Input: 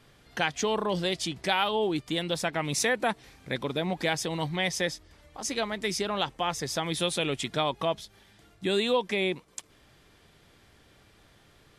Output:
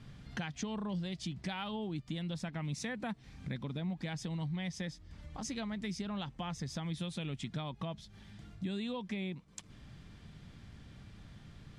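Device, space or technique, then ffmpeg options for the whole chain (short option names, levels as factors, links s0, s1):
jukebox: -af "lowpass=7500,lowshelf=f=280:t=q:w=1.5:g=10.5,acompressor=threshold=0.0112:ratio=3,volume=0.841"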